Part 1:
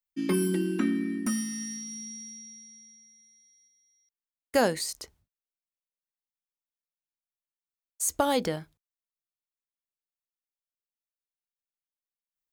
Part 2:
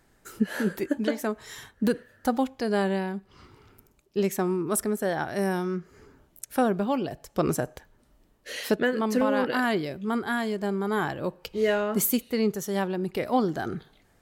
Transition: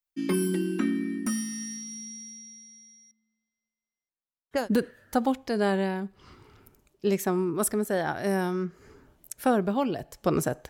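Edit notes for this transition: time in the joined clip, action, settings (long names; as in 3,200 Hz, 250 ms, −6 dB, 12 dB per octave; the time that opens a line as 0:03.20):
part 1
0:03.11–0:04.69: low-pass that shuts in the quiet parts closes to 1,100 Hz, open at −19 dBFS
0:04.60: continue with part 2 from 0:01.72, crossfade 0.18 s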